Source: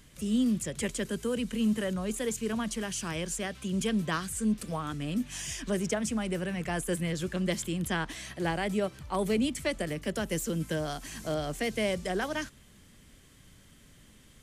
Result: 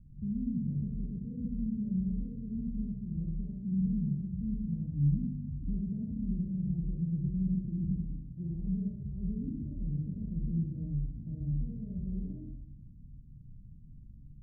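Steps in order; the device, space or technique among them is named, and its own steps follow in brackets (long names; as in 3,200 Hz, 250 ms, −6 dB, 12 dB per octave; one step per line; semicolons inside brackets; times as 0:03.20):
club heard from the street (brickwall limiter −26.5 dBFS, peak gain reduction 9 dB; low-pass filter 180 Hz 24 dB per octave; convolution reverb RT60 0.80 s, pre-delay 41 ms, DRR −4.5 dB)
level +4.5 dB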